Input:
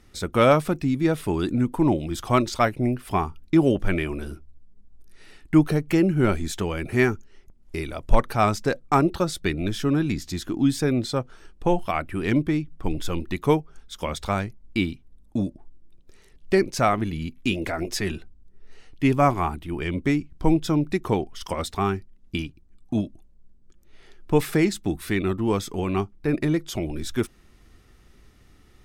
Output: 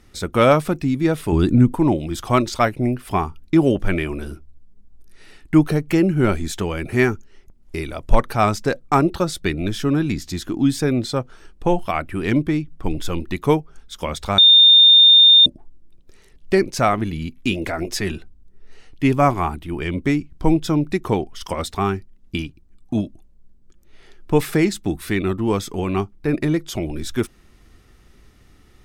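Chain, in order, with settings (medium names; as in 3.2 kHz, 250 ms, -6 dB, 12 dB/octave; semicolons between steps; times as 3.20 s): 1.32–1.75 s: bass shelf 240 Hz +11 dB; 14.38–15.46 s: bleep 3.63 kHz -9.5 dBFS; trim +3 dB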